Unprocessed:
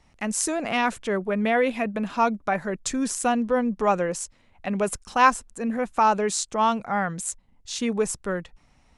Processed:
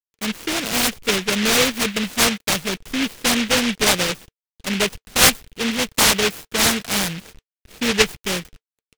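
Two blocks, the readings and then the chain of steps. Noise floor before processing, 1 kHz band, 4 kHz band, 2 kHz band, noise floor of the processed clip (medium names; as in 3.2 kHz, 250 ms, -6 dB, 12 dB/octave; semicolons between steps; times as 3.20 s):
-60 dBFS, -3.5 dB, +18.0 dB, +8.0 dB, under -85 dBFS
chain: median filter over 9 samples; word length cut 8-bit, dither none; small resonant body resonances 450/3000 Hz, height 7 dB, ringing for 80 ms; level-controlled noise filter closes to 1.1 kHz, open at -18 dBFS; delay time shaken by noise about 2.4 kHz, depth 0.37 ms; trim +3.5 dB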